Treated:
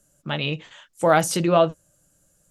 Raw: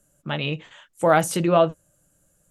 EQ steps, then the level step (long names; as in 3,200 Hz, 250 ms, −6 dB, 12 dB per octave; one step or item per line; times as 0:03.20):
parametric band 5,100 Hz +6.5 dB 0.9 octaves
0.0 dB